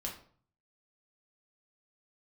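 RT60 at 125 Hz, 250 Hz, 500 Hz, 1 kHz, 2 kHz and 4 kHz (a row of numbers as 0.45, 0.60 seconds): 0.80, 0.60, 0.50, 0.50, 0.40, 0.35 seconds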